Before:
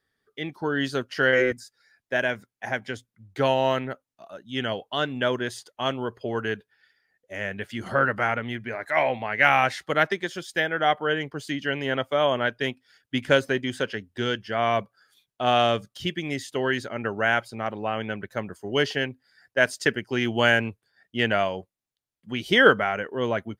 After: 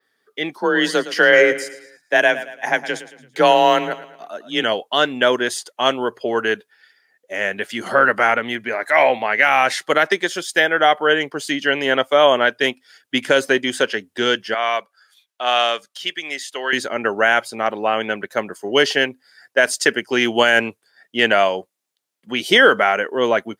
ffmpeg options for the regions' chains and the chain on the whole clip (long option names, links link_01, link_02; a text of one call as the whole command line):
ffmpeg -i in.wav -filter_complex "[0:a]asettb=1/sr,asplit=3[link_01][link_02][link_03];[link_01]atrim=end=0.584[link_04];[link_02]atrim=start=0.58:end=4.63,asetpts=PTS-STARTPTS,afade=type=in:duration=0.004:curve=qsin,afade=type=out:start_time=4.046:duration=0.004:curve=qsin,afreqshift=32,aecho=1:1:112|224|336|448:0.188|0.081|0.0348|0.015,atrim=end_sample=178605[link_05];[link_03]atrim=start=4.626[link_06];[link_04][link_05]acrossfade=duration=0.004:curve1=hsin:curve2=qsin[link_07];[link_07][link_06]acrossfade=duration=0.004:curve1=qsin:curve2=hsin,asettb=1/sr,asplit=3[link_08][link_09][link_10];[link_08]atrim=end=14.544[link_11];[link_09]atrim=start=14.54:end=16.73,asetpts=PTS-STARTPTS,afade=type=in:duration=0.004:curve=qsin,afade=type=out:start_time=2.186:duration=0.004:curve=qsin,highpass=frequency=1500:poles=1,highshelf=frequency=5300:gain=-7.5[link_12];[link_10]atrim=start=16.726[link_13];[link_11][link_12]acrossfade=duration=0.004:curve1=hsin:curve2=qsin[link_14];[link_14][link_13]acrossfade=duration=0.004:curve1=qsin:curve2=hsin,highpass=300,adynamicequalizer=threshold=0.00447:dfrequency=8800:dqfactor=0.8:tfrequency=8800:tqfactor=0.8:attack=5:release=100:ratio=0.375:range=2.5:mode=boostabove:tftype=bell,alimiter=level_in=10.5dB:limit=-1dB:release=50:level=0:latency=1,volume=-1dB" out.wav